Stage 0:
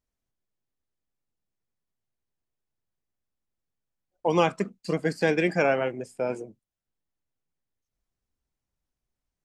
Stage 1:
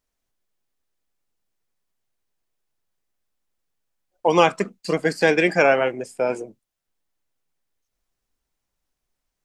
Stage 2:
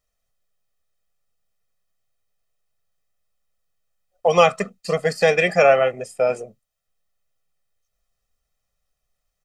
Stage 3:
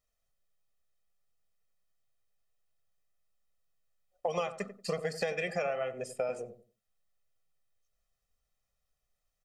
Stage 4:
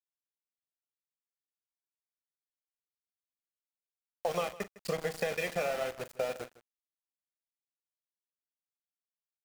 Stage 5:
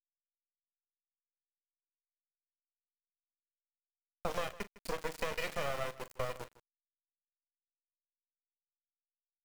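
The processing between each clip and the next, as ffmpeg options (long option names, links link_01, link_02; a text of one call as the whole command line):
ffmpeg -i in.wav -af "equalizer=frequency=93:width=0.35:gain=-8.5,volume=8dB" out.wav
ffmpeg -i in.wav -af "aecho=1:1:1.6:0.87,volume=-1dB" out.wav
ffmpeg -i in.wav -filter_complex "[0:a]acompressor=threshold=-23dB:ratio=16,asplit=2[link_01][link_02];[link_02]adelay=92,lowpass=frequency=830:poles=1,volume=-10dB,asplit=2[link_03][link_04];[link_04]adelay=92,lowpass=frequency=830:poles=1,volume=0.27,asplit=2[link_05][link_06];[link_06]adelay=92,lowpass=frequency=830:poles=1,volume=0.27[link_07];[link_01][link_03][link_05][link_07]amix=inputs=4:normalize=0,volume=-6dB" out.wav
ffmpeg -i in.wav -af "aeval=exprs='val(0)*gte(abs(val(0)),0.015)':channel_layout=same,aecho=1:1:41|157:0.178|0.119" out.wav
ffmpeg -i in.wav -af "aeval=exprs='max(val(0),0)':channel_layout=same" out.wav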